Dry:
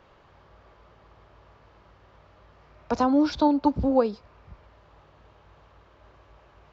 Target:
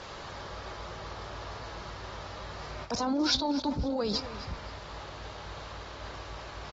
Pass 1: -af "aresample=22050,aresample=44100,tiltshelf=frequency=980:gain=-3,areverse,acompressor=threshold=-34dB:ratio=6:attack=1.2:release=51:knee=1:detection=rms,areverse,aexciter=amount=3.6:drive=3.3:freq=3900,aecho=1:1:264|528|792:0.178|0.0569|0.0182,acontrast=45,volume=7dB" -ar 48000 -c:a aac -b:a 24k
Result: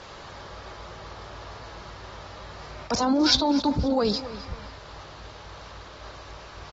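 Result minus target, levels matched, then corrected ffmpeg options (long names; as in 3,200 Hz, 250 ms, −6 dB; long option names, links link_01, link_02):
downward compressor: peak gain reduction −6.5 dB
-af "aresample=22050,aresample=44100,tiltshelf=frequency=980:gain=-3,areverse,acompressor=threshold=-42dB:ratio=6:attack=1.2:release=51:knee=1:detection=rms,areverse,aexciter=amount=3.6:drive=3.3:freq=3900,aecho=1:1:264|528|792:0.178|0.0569|0.0182,acontrast=45,volume=7dB" -ar 48000 -c:a aac -b:a 24k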